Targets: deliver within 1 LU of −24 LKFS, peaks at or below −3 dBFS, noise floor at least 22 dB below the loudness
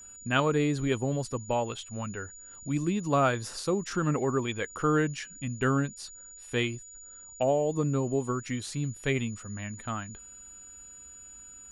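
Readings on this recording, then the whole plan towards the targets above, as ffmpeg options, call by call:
interfering tone 6,900 Hz; level of the tone −46 dBFS; integrated loudness −30.0 LKFS; sample peak −11.5 dBFS; target loudness −24.0 LKFS
→ -af "bandreject=frequency=6900:width=30"
-af "volume=6dB"

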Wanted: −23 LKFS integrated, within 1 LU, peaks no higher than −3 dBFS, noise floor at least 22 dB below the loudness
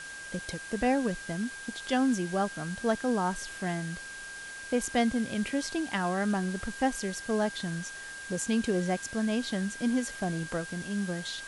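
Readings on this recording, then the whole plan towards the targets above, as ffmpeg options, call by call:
interfering tone 1,600 Hz; level of the tone −41 dBFS; background noise floor −43 dBFS; target noise floor −54 dBFS; integrated loudness −31.5 LKFS; sample peak −14.0 dBFS; target loudness −23.0 LKFS
→ -af "bandreject=frequency=1600:width=30"
-af "afftdn=noise_reduction=11:noise_floor=-43"
-af "volume=8.5dB"

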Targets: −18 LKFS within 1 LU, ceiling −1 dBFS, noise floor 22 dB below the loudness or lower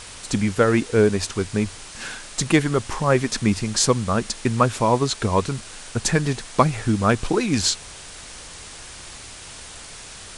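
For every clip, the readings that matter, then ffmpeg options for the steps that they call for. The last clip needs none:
background noise floor −40 dBFS; target noise floor −44 dBFS; integrated loudness −21.5 LKFS; sample peak −2.5 dBFS; target loudness −18.0 LKFS
→ -af "afftdn=noise_reduction=6:noise_floor=-40"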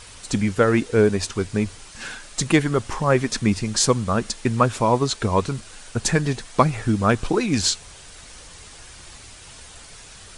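background noise floor −44 dBFS; integrated loudness −21.5 LKFS; sample peak −2.5 dBFS; target loudness −18.0 LKFS
→ -af "volume=3.5dB,alimiter=limit=-1dB:level=0:latency=1"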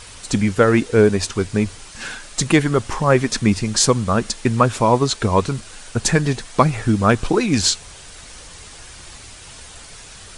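integrated loudness −18.0 LKFS; sample peak −1.0 dBFS; background noise floor −40 dBFS

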